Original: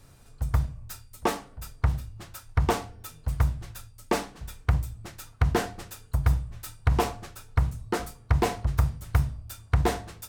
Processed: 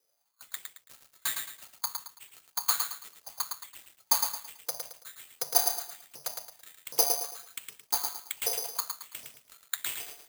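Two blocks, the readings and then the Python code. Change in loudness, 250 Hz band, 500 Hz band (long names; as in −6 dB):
−2.0 dB, −24.5 dB, −10.5 dB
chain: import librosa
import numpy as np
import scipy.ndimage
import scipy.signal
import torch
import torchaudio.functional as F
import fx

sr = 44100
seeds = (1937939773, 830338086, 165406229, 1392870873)

y = fx.dead_time(x, sr, dead_ms=0.1)
y = fx.noise_reduce_blind(y, sr, reduce_db=15)
y = fx.filter_lfo_highpass(y, sr, shape='saw_up', hz=1.3, low_hz=420.0, high_hz=3400.0, q=4.9)
y = (np.kron(y[::8], np.eye(8)[0]) * 8)[:len(y)]
y = fx.echo_crushed(y, sr, ms=110, feedback_pct=35, bits=7, wet_db=-5.0)
y = y * librosa.db_to_amplitude(-13.5)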